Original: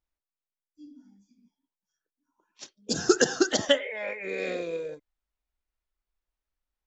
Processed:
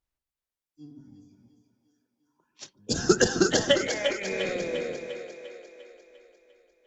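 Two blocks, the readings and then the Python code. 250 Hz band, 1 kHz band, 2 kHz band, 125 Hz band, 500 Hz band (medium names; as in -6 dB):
+2.0 dB, +1.5 dB, +1.5 dB, +8.0 dB, +1.5 dB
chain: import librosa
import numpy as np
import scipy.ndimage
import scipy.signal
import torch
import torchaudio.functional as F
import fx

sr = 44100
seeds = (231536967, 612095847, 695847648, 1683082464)

y = fx.octave_divider(x, sr, octaves=1, level_db=-4.0)
y = fx.cheby_harmonics(y, sr, harmonics=(5,), levels_db=(-36,), full_scale_db=-6.0)
y = fx.echo_split(y, sr, split_hz=340.0, low_ms=132, high_ms=349, feedback_pct=52, wet_db=-6.5)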